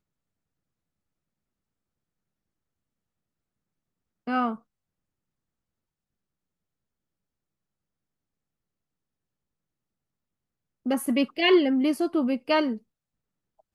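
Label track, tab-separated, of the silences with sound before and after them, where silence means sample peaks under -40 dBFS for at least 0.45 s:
4.560000	10.860000	silence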